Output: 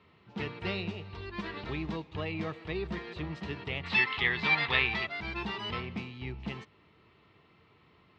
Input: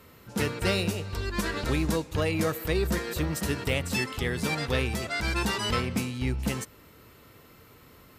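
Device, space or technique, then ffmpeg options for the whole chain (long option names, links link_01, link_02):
guitar cabinet: -filter_complex "[0:a]highpass=97,equalizer=frequency=120:width_type=q:width=4:gain=-4,equalizer=frequency=260:width_type=q:width=4:gain=-8,equalizer=frequency=530:width_type=q:width=4:gain=-10,equalizer=frequency=1500:width_type=q:width=4:gain=-8,lowpass=frequency=3600:width=0.5412,lowpass=frequency=3600:width=1.3066,asplit=3[link_01][link_02][link_03];[link_01]afade=type=out:start_time=3.83:duration=0.02[link_04];[link_02]equalizer=frequency=1000:width_type=o:width=1:gain=8,equalizer=frequency=2000:width_type=o:width=1:gain=11,equalizer=frequency=4000:width_type=o:width=1:gain=10,afade=type=in:start_time=3.83:duration=0.02,afade=type=out:start_time=5.05:duration=0.02[link_05];[link_03]afade=type=in:start_time=5.05:duration=0.02[link_06];[link_04][link_05][link_06]amix=inputs=3:normalize=0,volume=-5dB"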